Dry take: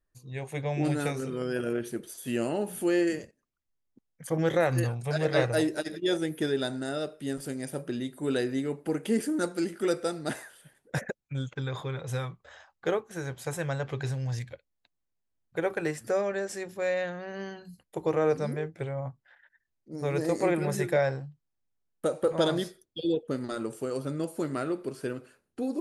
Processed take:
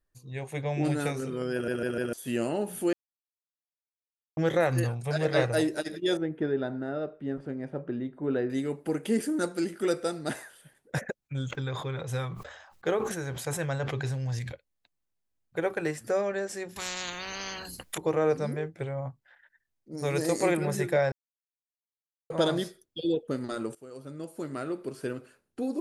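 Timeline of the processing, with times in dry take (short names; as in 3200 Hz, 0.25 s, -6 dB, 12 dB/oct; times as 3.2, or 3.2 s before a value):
1.53 stutter in place 0.15 s, 4 plays
2.93–4.37 mute
6.17–8.5 LPF 1500 Hz
11.19–14.52 sustainer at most 51 dB/s
16.76–17.98 spectral compressor 10:1
19.97–20.57 high shelf 3200 Hz +10.5 dB
21.12–22.3 mute
23.75–25.1 fade in, from -17.5 dB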